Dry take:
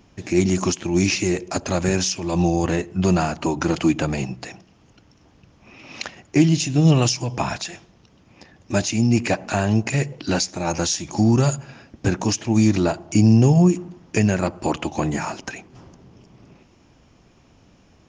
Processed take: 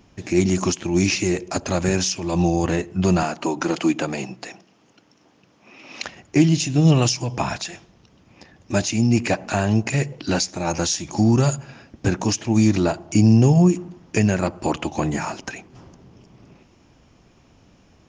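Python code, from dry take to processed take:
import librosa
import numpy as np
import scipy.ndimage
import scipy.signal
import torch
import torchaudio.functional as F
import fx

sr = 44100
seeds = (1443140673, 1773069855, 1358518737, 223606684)

y = fx.highpass(x, sr, hz=220.0, slope=12, at=(3.23, 6.03))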